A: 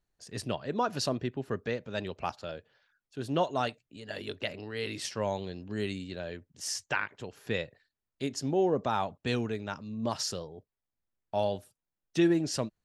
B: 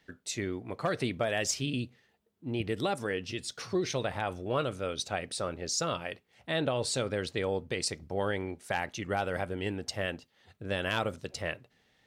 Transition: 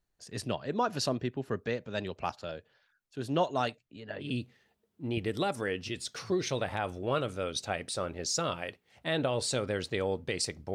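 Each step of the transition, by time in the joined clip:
A
3.76–4.33 s: low-pass 8.6 kHz -> 1 kHz
4.26 s: go over to B from 1.69 s, crossfade 0.14 s

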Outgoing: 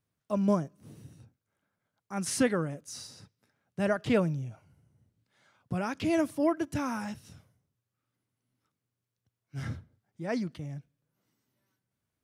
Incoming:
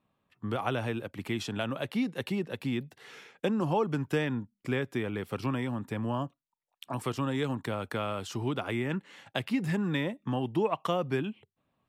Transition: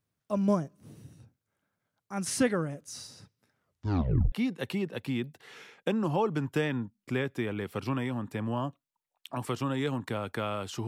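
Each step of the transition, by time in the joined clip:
outgoing
3.53 s: tape stop 0.79 s
4.32 s: go over to incoming from 1.89 s

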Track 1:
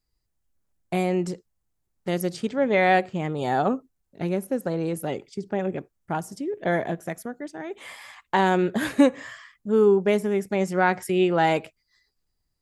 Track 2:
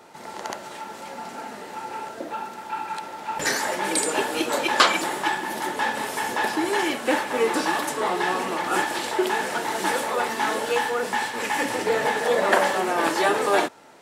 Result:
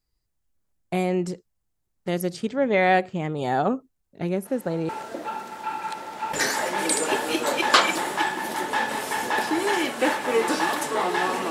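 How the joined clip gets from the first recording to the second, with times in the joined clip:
track 1
4.45 s: add track 2 from 1.51 s 0.44 s -12 dB
4.89 s: go over to track 2 from 1.95 s

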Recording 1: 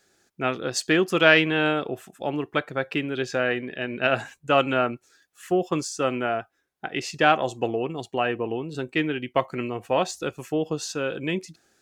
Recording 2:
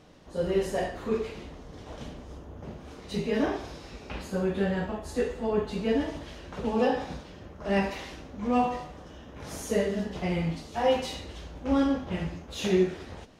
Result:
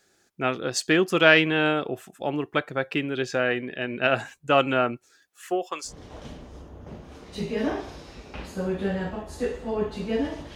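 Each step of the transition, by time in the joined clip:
recording 1
5.29–5.93 s: high-pass 180 Hz -> 1.5 kHz
5.88 s: go over to recording 2 from 1.64 s, crossfade 0.10 s

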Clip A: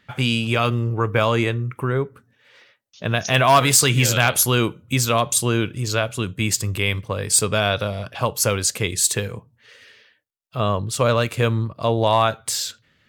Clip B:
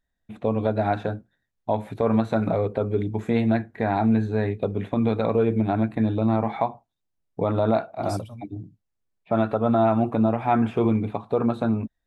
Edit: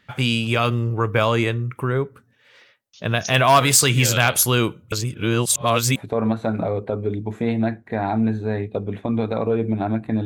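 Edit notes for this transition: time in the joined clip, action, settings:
clip A
4.92–5.96 s: reverse
5.96 s: go over to clip B from 1.84 s

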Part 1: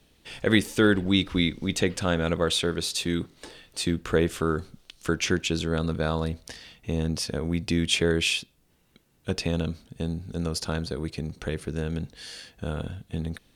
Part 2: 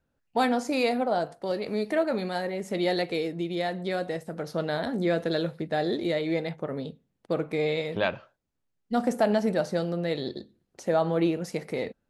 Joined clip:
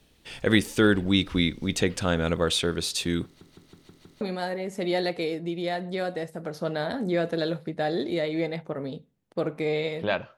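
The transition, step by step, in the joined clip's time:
part 1
3.25 s: stutter in place 0.16 s, 6 plays
4.21 s: go over to part 2 from 2.14 s

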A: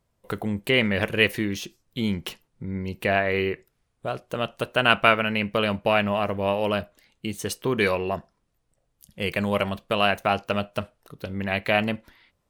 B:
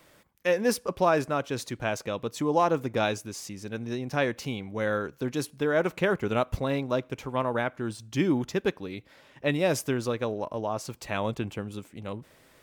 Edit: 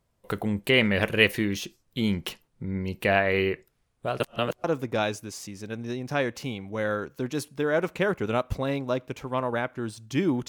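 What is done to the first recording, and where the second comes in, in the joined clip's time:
A
4.20–4.64 s: reverse
4.64 s: go over to B from 2.66 s

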